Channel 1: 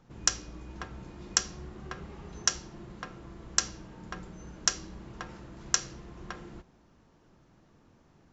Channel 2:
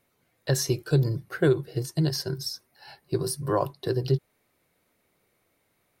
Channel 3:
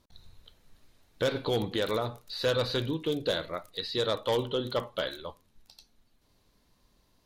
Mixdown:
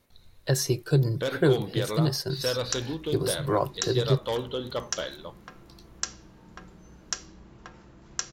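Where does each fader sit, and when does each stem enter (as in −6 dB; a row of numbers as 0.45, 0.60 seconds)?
−5.0, 0.0, −1.5 decibels; 2.45, 0.00, 0.00 seconds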